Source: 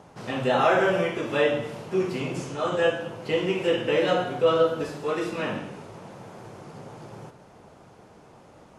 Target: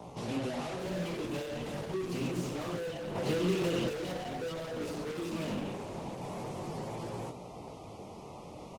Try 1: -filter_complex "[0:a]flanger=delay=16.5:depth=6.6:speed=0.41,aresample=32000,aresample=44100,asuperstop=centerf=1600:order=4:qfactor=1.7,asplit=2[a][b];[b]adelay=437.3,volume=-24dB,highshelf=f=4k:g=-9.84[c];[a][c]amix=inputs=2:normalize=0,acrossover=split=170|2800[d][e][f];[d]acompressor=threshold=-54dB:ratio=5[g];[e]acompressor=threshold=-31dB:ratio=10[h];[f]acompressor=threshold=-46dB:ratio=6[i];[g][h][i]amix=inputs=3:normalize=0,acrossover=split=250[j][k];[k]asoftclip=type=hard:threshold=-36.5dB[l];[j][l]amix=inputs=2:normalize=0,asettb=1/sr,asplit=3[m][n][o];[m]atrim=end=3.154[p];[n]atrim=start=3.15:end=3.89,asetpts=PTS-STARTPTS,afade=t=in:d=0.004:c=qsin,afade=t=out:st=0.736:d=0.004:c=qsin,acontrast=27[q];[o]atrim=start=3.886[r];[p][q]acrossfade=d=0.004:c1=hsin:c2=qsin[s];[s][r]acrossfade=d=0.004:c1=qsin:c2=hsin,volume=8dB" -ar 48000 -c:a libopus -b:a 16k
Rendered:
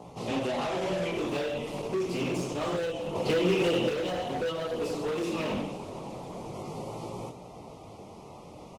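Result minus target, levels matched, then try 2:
hard clip: distortion -5 dB
-filter_complex "[0:a]flanger=delay=16.5:depth=6.6:speed=0.41,aresample=32000,aresample=44100,asuperstop=centerf=1600:order=4:qfactor=1.7,asplit=2[a][b];[b]adelay=437.3,volume=-24dB,highshelf=f=4k:g=-9.84[c];[a][c]amix=inputs=2:normalize=0,acrossover=split=170|2800[d][e][f];[d]acompressor=threshold=-54dB:ratio=5[g];[e]acompressor=threshold=-31dB:ratio=10[h];[f]acompressor=threshold=-46dB:ratio=6[i];[g][h][i]amix=inputs=3:normalize=0,acrossover=split=250[j][k];[k]asoftclip=type=hard:threshold=-46dB[l];[j][l]amix=inputs=2:normalize=0,asettb=1/sr,asplit=3[m][n][o];[m]atrim=end=3.154[p];[n]atrim=start=3.15:end=3.89,asetpts=PTS-STARTPTS,afade=t=in:d=0.004:c=qsin,afade=t=out:st=0.736:d=0.004:c=qsin,acontrast=27[q];[o]atrim=start=3.886[r];[p][q]acrossfade=d=0.004:c1=hsin:c2=qsin[s];[s][r]acrossfade=d=0.004:c1=qsin:c2=hsin,volume=8dB" -ar 48000 -c:a libopus -b:a 16k

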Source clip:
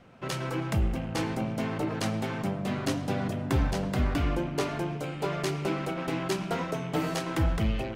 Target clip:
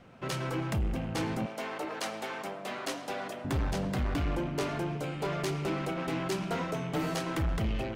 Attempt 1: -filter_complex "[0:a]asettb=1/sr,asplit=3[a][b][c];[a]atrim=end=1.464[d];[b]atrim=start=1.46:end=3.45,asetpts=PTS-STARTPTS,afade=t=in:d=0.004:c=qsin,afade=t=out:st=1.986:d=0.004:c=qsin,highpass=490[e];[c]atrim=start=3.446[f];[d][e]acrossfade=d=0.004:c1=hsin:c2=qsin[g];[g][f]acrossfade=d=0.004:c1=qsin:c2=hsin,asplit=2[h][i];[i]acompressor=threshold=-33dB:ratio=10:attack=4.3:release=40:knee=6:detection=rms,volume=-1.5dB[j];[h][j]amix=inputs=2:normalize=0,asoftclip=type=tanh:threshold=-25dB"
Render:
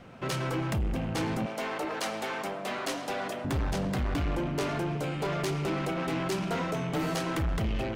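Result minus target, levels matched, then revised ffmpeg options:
compressor: peak gain reduction +13.5 dB
-filter_complex "[0:a]asettb=1/sr,asplit=3[a][b][c];[a]atrim=end=1.464[d];[b]atrim=start=1.46:end=3.45,asetpts=PTS-STARTPTS,afade=t=in:d=0.004:c=qsin,afade=t=out:st=1.986:d=0.004:c=qsin,highpass=490[e];[c]atrim=start=3.446[f];[d][e]acrossfade=d=0.004:c1=hsin:c2=qsin[g];[g][f]acrossfade=d=0.004:c1=qsin:c2=hsin,asoftclip=type=tanh:threshold=-25dB"

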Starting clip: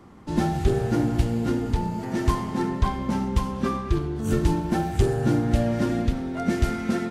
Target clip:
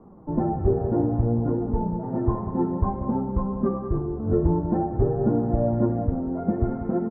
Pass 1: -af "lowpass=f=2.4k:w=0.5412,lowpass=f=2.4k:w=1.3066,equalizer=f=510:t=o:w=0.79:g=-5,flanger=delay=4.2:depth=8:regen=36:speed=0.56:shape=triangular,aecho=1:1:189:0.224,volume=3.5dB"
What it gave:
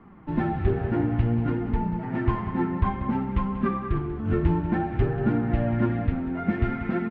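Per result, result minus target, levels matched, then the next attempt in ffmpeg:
2000 Hz band +18.0 dB; 500 Hz band -3.5 dB
-af "lowpass=f=1k:w=0.5412,lowpass=f=1k:w=1.3066,equalizer=f=510:t=o:w=0.79:g=-5,flanger=delay=4.2:depth=8:regen=36:speed=0.56:shape=triangular,aecho=1:1:189:0.224,volume=3.5dB"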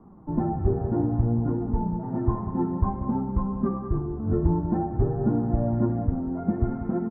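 500 Hz band -3.0 dB
-af "lowpass=f=1k:w=0.5412,lowpass=f=1k:w=1.3066,equalizer=f=510:t=o:w=0.79:g=3.5,flanger=delay=4.2:depth=8:regen=36:speed=0.56:shape=triangular,aecho=1:1:189:0.224,volume=3.5dB"

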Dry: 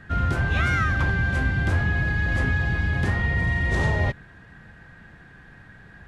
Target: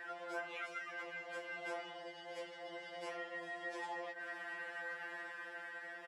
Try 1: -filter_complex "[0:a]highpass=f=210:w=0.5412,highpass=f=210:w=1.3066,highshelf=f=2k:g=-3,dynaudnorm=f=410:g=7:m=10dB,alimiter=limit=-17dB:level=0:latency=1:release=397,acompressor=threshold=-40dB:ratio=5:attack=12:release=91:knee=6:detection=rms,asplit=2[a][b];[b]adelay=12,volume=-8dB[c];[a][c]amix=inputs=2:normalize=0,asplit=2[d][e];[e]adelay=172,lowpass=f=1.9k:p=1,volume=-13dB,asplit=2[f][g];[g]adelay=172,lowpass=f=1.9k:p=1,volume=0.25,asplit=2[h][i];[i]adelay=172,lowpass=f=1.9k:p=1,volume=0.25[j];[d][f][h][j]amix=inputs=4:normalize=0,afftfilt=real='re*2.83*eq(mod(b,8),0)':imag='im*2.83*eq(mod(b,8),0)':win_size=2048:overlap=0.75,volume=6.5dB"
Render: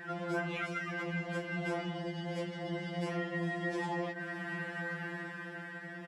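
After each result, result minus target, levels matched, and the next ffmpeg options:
250 Hz band +10.5 dB; compressor: peak gain reduction -7.5 dB
-filter_complex "[0:a]highpass=f=450:w=0.5412,highpass=f=450:w=1.3066,highshelf=f=2k:g=-3,dynaudnorm=f=410:g=7:m=10dB,alimiter=limit=-17dB:level=0:latency=1:release=397,acompressor=threshold=-40dB:ratio=5:attack=12:release=91:knee=6:detection=rms,asplit=2[a][b];[b]adelay=12,volume=-8dB[c];[a][c]amix=inputs=2:normalize=0,asplit=2[d][e];[e]adelay=172,lowpass=f=1.9k:p=1,volume=-13dB,asplit=2[f][g];[g]adelay=172,lowpass=f=1.9k:p=1,volume=0.25,asplit=2[h][i];[i]adelay=172,lowpass=f=1.9k:p=1,volume=0.25[j];[d][f][h][j]amix=inputs=4:normalize=0,afftfilt=real='re*2.83*eq(mod(b,8),0)':imag='im*2.83*eq(mod(b,8),0)':win_size=2048:overlap=0.75,volume=6.5dB"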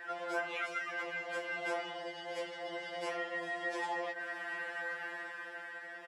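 compressor: peak gain reduction -7 dB
-filter_complex "[0:a]highpass=f=450:w=0.5412,highpass=f=450:w=1.3066,highshelf=f=2k:g=-3,dynaudnorm=f=410:g=7:m=10dB,alimiter=limit=-17dB:level=0:latency=1:release=397,acompressor=threshold=-48.5dB:ratio=5:attack=12:release=91:knee=6:detection=rms,asplit=2[a][b];[b]adelay=12,volume=-8dB[c];[a][c]amix=inputs=2:normalize=0,asplit=2[d][e];[e]adelay=172,lowpass=f=1.9k:p=1,volume=-13dB,asplit=2[f][g];[g]adelay=172,lowpass=f=1.9k:p=1,volume=0.25,asplit=2[h][i];[i]adelay=172,lowpass=f=1.9k:p=1,volume=0.25[j];[d][f][h][j]amix=inputs=4:normalize=0,afftfilt=real='re*2.83*eq(mod(b,8),0)':imag='im*2.83*eq(mod(b,8),0)':win_size=2048:overlap=0.75,volume=6.5dB"

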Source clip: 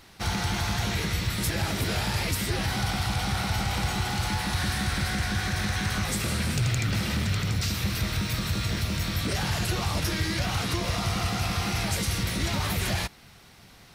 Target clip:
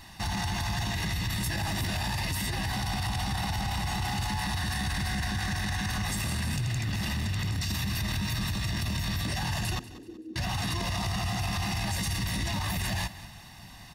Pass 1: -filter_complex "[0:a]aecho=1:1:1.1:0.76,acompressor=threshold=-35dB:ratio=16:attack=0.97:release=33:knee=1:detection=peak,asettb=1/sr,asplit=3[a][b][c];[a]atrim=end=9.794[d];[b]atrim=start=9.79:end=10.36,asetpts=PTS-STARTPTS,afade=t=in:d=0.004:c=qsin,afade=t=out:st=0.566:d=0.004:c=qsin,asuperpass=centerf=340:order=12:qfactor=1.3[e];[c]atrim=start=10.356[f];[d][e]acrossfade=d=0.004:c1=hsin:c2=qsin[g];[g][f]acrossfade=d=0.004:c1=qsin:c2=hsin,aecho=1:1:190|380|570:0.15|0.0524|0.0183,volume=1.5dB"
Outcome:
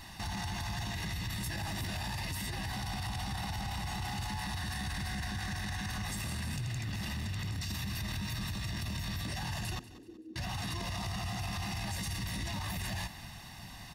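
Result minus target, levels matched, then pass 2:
compressor: peak gain reduction +6.5 dB
-filter_complex "[0:a]aecho=1:1:1.1:0.76,acompressor=threshold=-28dB:ratio=16:attack=0.97:release=33:knee=1:detection=peak,asettb=1/sr,asplit=3[a][b][c];[a]atrim=end=9.794[d];[b]atrim=start=9.79:end=10.36,asetpts=PTS-STARTPTS,afade=t=in:d=0.004:c=qsin,afade=t=out:st=0.566:d=0.004:c=qsin,asuperpass=centerf=340:order=12:qfactor=1.3[e];[c]atrim=start=10.356[f];[d][e]acrossfade=d=0.004:c1=hsin:c2=qsin[g];[g][f]acrossfade=d=0.004:c1=qsin:c2=hsin,aecho=1:1:190|380|570:0.15|0.0524|0.0183,volume=1.5dB"

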